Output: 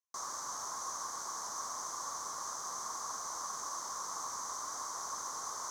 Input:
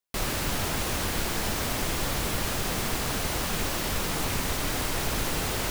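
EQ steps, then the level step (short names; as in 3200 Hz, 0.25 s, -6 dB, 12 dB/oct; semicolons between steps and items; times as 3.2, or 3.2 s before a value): double band-pass 2600 Hz, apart 2.5 oct; +1.0 dB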